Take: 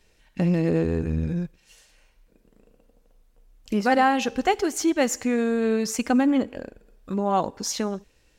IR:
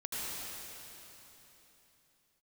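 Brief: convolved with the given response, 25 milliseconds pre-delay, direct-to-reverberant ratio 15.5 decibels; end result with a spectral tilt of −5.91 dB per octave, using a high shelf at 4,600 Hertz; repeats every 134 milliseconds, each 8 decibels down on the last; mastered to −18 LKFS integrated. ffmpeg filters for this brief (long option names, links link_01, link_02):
-filter_complex "[0:a]highshelf=frequency=4600:gain=-7.5,aecho=1:1:134|268|402|536|670:0.398|0.159|0.0637|0.0255|0.0102,asplit=2[link_01][link_02];[1:a]atrim=start_sample=2205,adelay=25[link_03];[link_02][link_03]afir=irnorm=-1:irlink=0,volume=-19.5dB[link_04];[link_01][link_04]amix=inputs=2:normalize=0,volume=5.5dB"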